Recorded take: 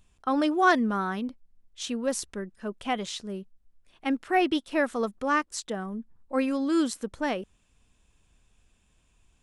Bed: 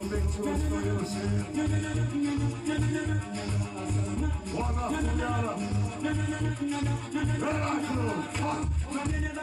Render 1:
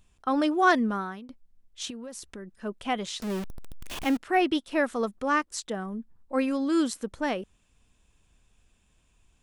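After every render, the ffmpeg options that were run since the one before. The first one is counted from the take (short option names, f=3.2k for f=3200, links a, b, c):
-filter_complex "[0:a]asettb=1/sr,asplit=3[a][b][c];[a]atrim=end=1.904[d];[b]atrim=start=1.9:end=2.55,asetpts=PTS-STARTPTS,afade=t=in:d=0.004:c=qsin,afade=t=out:st=0.646:d=0.004:c=qsin,acompressor=threshold=-36dB:ratio=10:attack=3.2:release=140:knee=1:detection=peak[e];[c]atrim=start=2.546[f];[d][e]acrossfade=d=0.004:c1=hsin:c2=qsin[g];[g][f]acrossfade=d=0.004:c1=qsin:c2=hsin,asettb=1/sr,asplit=3[h][i][j];[h]atrim=end=3.224[k];[i]atrim=start=3.22:end=4.17,asetpts=PTS-STARTPTS,afade=t=in:d=0.004:c=qsin,afade=t=out:st=0.946:d=0.004:c=qsin,aeval=exprs='val(0)+0.5*0.0316*sgn(val(0))':c=same[l];[j]atrim=start=4.166[m];[k][l]acrossfade=d=0.004:c1=hsin:c2=qsin[n];[n][m]acrossfade=d=0.004:c1=qsin:c2=hsin,asplit=2[o][p];[o]atrim=end=1.29,asetpts=PTS-STARTPTS,afade=t=out:st=0.86:d=0.43:silence=0.1[q];[p]atrim=start=1.29,asetpts=PTS-STARTPTS,afade=t=in:d=0.004:c=hsin:silence=0.1[r];[q][r]concat=n=2:v=0:a=1"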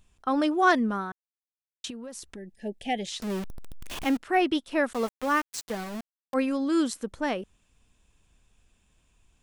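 -filter_complex "[0:a]asplit=3[a][b][c];[a]afade=t=out:st=2.35:d=0.02[d];[b]asuperstop=centerf=1200:order=20:qfactor=1.6,afade=t=in:st=2.35:d=0.02,afade=t=out:st=3.1:d=0.02[e];[c]afade=t=in:st=3.1:d=0.02[f];[d][e][f]amix=inputs=3:normalize=0,asettb=1/sr,asplit=3[g][h][i];[g]atrim=end=4.934[j];[h]atrim=start=4.93:end=6.34,asetpts=PTS-STARTPTS,afade=t=in:d=0.004:c=qsin,afade=t=out:st=1.406:d=0.004:c=qsin,aeval=exprs='val(0)*gte(abs(val(0)),0.02)':c=same[k];[i]atrim=start=6.336[l];[j][k]acrossfade=d=0.004:c1=hsin:c2=qsin[m];[m][l]acrossfade=d=0.004:c1=qsin:c2=hsin,asplit=3[n][o][p];[n]atrim=end=1.12,asetpts=PTS-STARTPTS,afade=t=out:st=1.116:d=0.004:c=hsin[q];[o]atrim=start=1.12:end=1.84,asetpts=PTS-STARTPTS,volume=0[r];[p]atrim=start=1.84,asetpts=PTS-STARTPTS,afade=t=in:d=0.004:c=hsin[s];[q][r][s]concat=n=3:v=0:a=1"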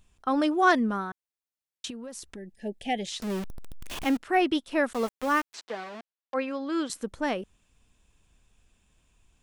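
-filter_complex "[0:a]asettb=1/sr,asplit=3[a][b][c];[a]atrim=end=5.534[d];[b]atrim=start=5.53:end=6.9,asetpts=PTS-STARTPTS,afade=t=in:d=0.004:c=qsin,afade=t=out:st=1.366:d=0.004:c=qsin,highpass=390,lowpass=3.9k[e];[c]atrim=start=6.896[f];[d][e]acrossfade=d=0.004:c1=hsin:c2=qsin[g];[g][f]acrossfade=d=0.004:c1=qsin:c2=hsin"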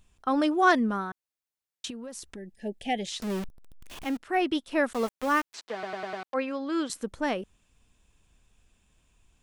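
-filter_complex "[0:a]asplit=7[a][b][c][d][e][f][g];[a]atrim=end=3.49,asetpts=PTS-STARTPTS,afade=t=out:st=3.486:d=0.004:c=hsin:silence=0.141254[h];[b]atrim=start=3.49:end=5.832,asetpts=PTS-STARTPTS,afade=t=in:d=1.31:silence=0.141254[i];[c]atrim=start=5.728:end=5.832[j];[d]atrim=start=5.728:end=5.832[k];[e]atrim=start=5.728:end=5.832[l];[f]atrim=start=5.728:end=5.832[m];[g]atrim=start=6.228[n];[h][i]concat=n=2:v=0:a=1[o];[o][j]acrossfade=d=0.004:c1=hsin:c2=hsin[p];[p][k]acrossfade=d=0.004:c1=hsin:c2=hsin[q];[q][l]acrossfade=d=0.004:c1=hsin:c2=hsin[r];[r][m]acrossfade=d=0.004:c1=hsin:c2=hsin[s];[s][n]acrossfade=d=0.004:c1=hsin:c2=hsin"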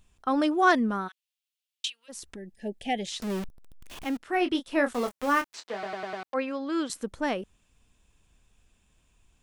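-filter_complex "[0:a]asplit=3[a][b][c];[a]afade=t=out:st=1.07:d=0.02[d];[b]highpass=f=2.9k:t=q:w=2.8,afade=t=in:st=1.07:d=0.02,afade=t=out:st=2.08:d=0.02[e];[c]afade=t=in:st=2.08:d=0.02[f];[d][e][f]amix=inputs=3:normalize=0,asettb=1/sr,asplit=3[g][h][i];[g]atrim=end=4.234[j];[h]atrim=start=4.23:end=5.94,asetpts=PTS-STARTPTS,afade=t=in:d=0.004:c=qsin,afade=t=out:st=1.706:d=0.004:c=qsin,asplit=2[k][l];[l]adelay=25,volume=-8dB[m];[k][m]amix=inputs=2:normalize=0,atrim=end_sample=75411[n];[i]atrim=start=5.936[o];[j][n]acrossfade=d=0.004:c1=hsin:c2=qsin[p];[p][o]acrossfade=d=0.004:c1=qsin:c2=hsin"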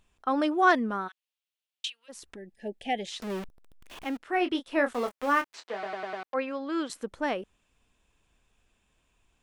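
-af "bass=f=250:g=-7,treble=f=4k:g=-6"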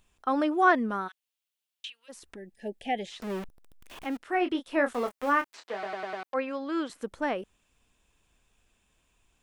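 -filter_complex "[0:a]acrossover=split=2700[a][b];[b]acompressor=threshold=-50dB:ratio=4:attack=1:release=60[c];[a][c]amix=inputs=2:normalize=0,highshelf=f=5.6k:g=5.5"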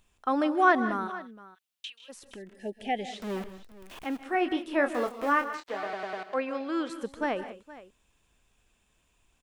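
-af "aecho=1:1:133|158|181|190|468:0.106|0.15|0.106|0.133|0.126"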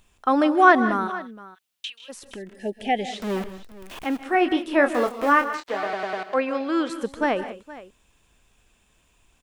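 -af "volume=7dB"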